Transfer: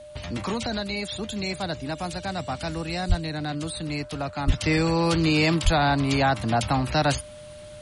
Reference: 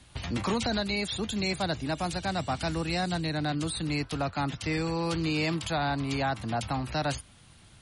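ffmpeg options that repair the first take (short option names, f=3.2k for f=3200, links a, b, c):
-filter_complex "[0:a]bandreject=f=600:w=30,asplit=3[a][b][c];[a]afade=t=out:st=3.08:d=0.02[d];[b]highpass=f=140:w=0.5412,highpass=f=140:w=1.3066,afade=t=in:st=3.08:d=0.02,afade=t=out:st=3.2:d=0.02[e];[c]afade=t=in:st=3.2:d=0.02[f];[d][e][f]amix=inputs=3:normalize=0,asplit=3[g][h][i];[g]afade=t=out:st=4.46:d=0.02[j];[h]highpass=f=140:w=0.5412,highpass=f=140:w=1.3066,afade=t=in:st=4.46:d=0.02,afade=t=out:st=4.58:d=0.02[k];[i]afade=t=in:st=4.58:d=0.02[l];[j][k][l]amix=inputs=3:normalize=0,asplit=3[m][n][o];[m]afade=t=out:st=5.64:d=0.02[p];[n]highpass=f=140:w=0.5412,highpass=f=140:w=1.3066,afade=t=in:st=5.64:d=0.02,afade=t=out:st=5.76:d=0.02[q];[o]afade=t=in:st=5.76:d=0.02[r];[p][q][r]amix=inputs=3:normalize=0,agate=range=-21dB:threshold=-34dB,asetnsamples=n=441:p=0,asendcmd='4.48 volume volume -7.5dB',volume=0dB"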